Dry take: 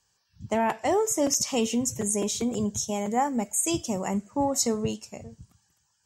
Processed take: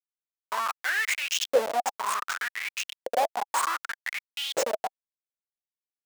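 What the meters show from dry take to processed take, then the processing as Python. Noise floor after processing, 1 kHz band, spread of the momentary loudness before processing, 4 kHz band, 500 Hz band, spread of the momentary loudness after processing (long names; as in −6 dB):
below −85 dBFS, +1.0 dB, 6 LU, +2.5 dB, −2.5 dB, 8 LU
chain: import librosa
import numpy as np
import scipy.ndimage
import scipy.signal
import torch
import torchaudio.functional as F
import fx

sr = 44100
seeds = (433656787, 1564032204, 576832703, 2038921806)

y = fx.schmitt(x, sr, flips_db=-23.5)
y = fx.filter_lfo_highpass(y, sr, shape='saw_up', hz=0.66, low_hz=490.0, high_hz=3600.0, q=7.9)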